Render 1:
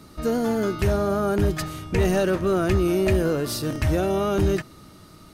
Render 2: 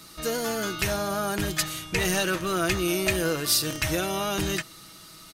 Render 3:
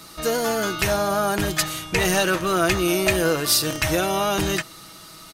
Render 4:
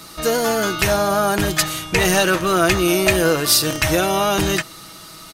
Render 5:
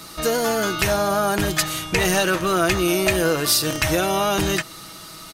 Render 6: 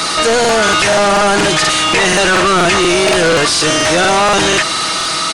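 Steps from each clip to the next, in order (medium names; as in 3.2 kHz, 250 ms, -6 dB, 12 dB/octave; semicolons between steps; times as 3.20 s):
tilt shelf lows -8.5 dB, about 1.2 kHz; comb 6.1 ms, depth 41%
peaking EQ 780 Hz +4.5 dB 1.6 oct; trim +3.5 dB
crackle 65 per s -51 dBFS; trim +4 dB
compression 1.5:1, threshold -21 dBFS, peak gain reduction 4 dB
overdrive pedal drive 36 dB, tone 5.2 kHz, clips at -4.5 dBFS; resampled via 22.05 kHz; crackling interface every 0.24 s, samples 2048, repeat, from 0.40 s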